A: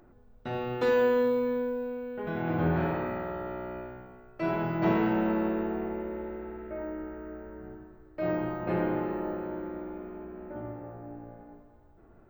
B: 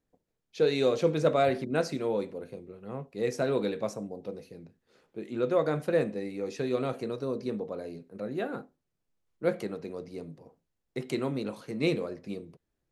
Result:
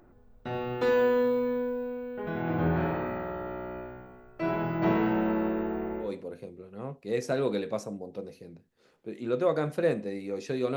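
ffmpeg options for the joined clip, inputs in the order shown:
ffmpeg -i cue0.wav -i cue1.wav -filter_complex "[0:a]apad=whole_dur=10.76,atrim=end=10.76,atrim=end=6.14,asetpts=PTS-STARTPTS[link_01];[1:a]atrim=start=2.08:end=6.86,asetpts=PTS-STARTPTS[link_02];[link_01][link_02]acrossfade=duration=0.16:curve1=tri:curve2=tri" out.wav

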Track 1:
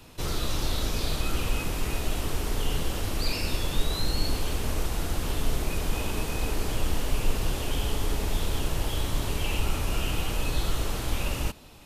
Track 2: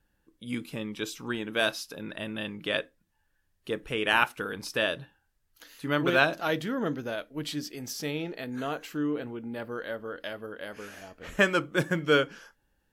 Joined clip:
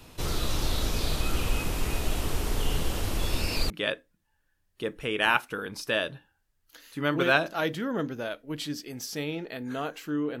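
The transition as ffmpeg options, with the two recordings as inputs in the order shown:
ffmpeg -i cue0.wav -i cue1.wav -filter_complex "[0:a]apad=whole_dur=10.4,atrim=end=10.4,asplit=2[link_01][link_02];[link_01]atrim=end=3.192[link_03];[link_02]atrim=start=3.188:end=3.702,asetpts=PTS-STARTPTS,areverse[link_04];[1:a]atrim=start=2.568:end=9.27[link_05];[link_03][link_04]acrossfade=duration=0.004:curve1=hsin:curve2=hsin[link_06];[link_06][link_05]acrossfade=duration=0.004:curve1=hsin:curve2=hsin" out.wav

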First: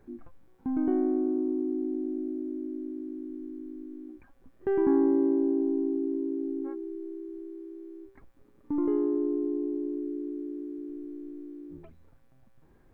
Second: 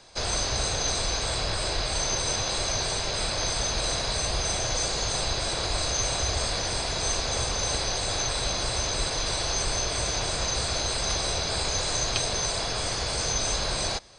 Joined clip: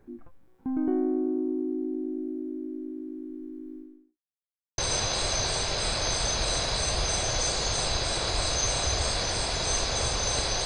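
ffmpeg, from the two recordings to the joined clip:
ffmpeg -i cue0.wav -i cue1.wav -filter_complex "[0:a]apad=whole_dur=10.65,atrim=end=10.65,asplit=2[link_01][link_02];[link_01]atrim=end=4.19,asetpts=PTS-STARTPTS,afade=type=out:start_time=3.76:duration=0.43:curve=qua[link_03];[link_02]atrim=start=4.19:end=4.78,asetpts=PTS-STARTPTS,volume=0[link_04];[1:a]atrim=start=2.14:end=8.01,asetpts=PTS-STARTPTS,afade=type=in:duration=0.004:curve=hsin[link_05];[link_03][link_04][link_05]concat=n=3:v=0:a=1" out.wav

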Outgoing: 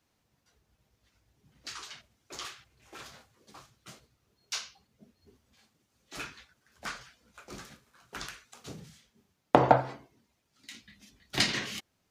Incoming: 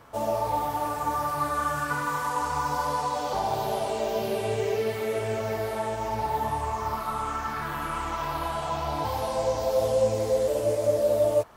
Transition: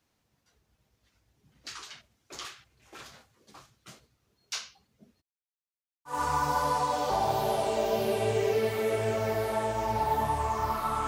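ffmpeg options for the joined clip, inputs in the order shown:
ffmpeg -i cue0.wav -i cue1.wav -filter_complex "[0:a]asplit=3[link_01][link_02][link_03];[link_01]afade=type=out:start_time=5.2:duration=0.02[link_04];[link_02]acrusher=bits=3:dc=4:mix=0:aa=0.000001,afade=type=in:start_time=5.2:duration=0.02,afade=type=out:start_time=6.23:duration=0.02[link_05];[link_03]afade=type=in:start_time=6.23:duration=0.02[link_06];[link_04][link_05][link_06]amix=inputs=3:normalize=0,apad=whole_dur=11.07,atrim=end=11.07,atrim=end=6.23,asetpts=PTS-STARTPTS[link_07];[1:a]atrim=start=2.28:end=7.3,asetpts=PTS-STARTPTS[link_08];[link_07][link_08]acrossfade=duration=0.18:curve1=tri:curve2=tri" out.wav

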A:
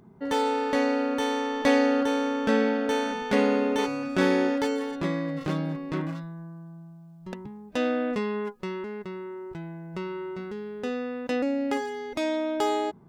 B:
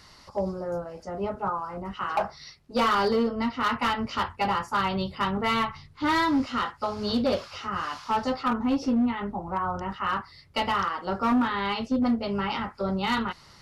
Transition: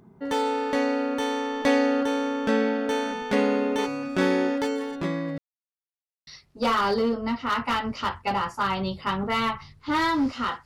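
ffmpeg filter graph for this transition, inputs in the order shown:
ffmpeg -i cue0.wav -i cue1.wav -filter_complex "[0:a]apad=whole_dur=10.65,atrim=end=10.65,asplit=2[link_01][link_02];[link_01]atrim=end=5.38,asetpts=PTS-STARTPTS,afade=type=out:start_time=5.376:duration=0.004:curve=hsin[link_03];[link_02]atrim=start=5.38:end=6.27,asetpts=PTS-STARTPTS,volume=0[link_04];[1:a]atrim=start=2.41:end=6.79,asetpts=PTS-STARTPTS,afade=type=in:duration=0.004:curve=hsin[link_05];[link_03][link_04][link_05]concat=n=3:v=0:a=1" out.wav

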